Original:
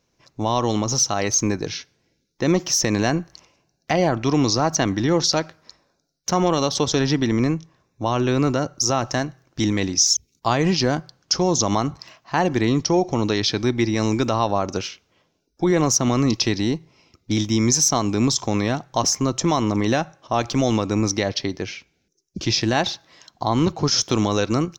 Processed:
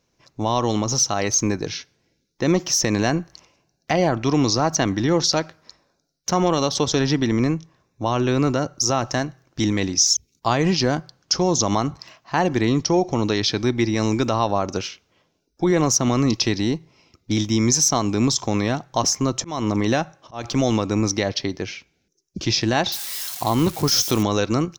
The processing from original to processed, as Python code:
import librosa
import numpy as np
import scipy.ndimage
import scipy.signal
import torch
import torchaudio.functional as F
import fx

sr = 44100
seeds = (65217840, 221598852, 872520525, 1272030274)

y = fx.auto_swell(x, sr, attack_ms=239.0, at=(19.12, 20.43), fade=0.02)
y = fx.crossing_spikes(y, sr, level_db=-21.0, at=(22.92, 24.23))